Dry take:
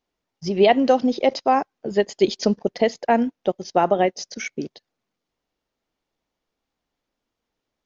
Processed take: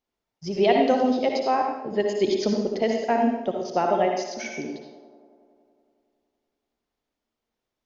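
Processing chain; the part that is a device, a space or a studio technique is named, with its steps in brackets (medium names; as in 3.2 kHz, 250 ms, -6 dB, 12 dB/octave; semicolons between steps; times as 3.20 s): 1.53–1.98 s: low-pass 3.8 kHz; feedback echo behind a band-pass 93 ms, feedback 79%, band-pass 460 Hz, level -16.5 dB; bathroom (reverberation RT60 0.75 s, pre-delay 55 ms, DRR 1.5 dB); trim -5.5 dB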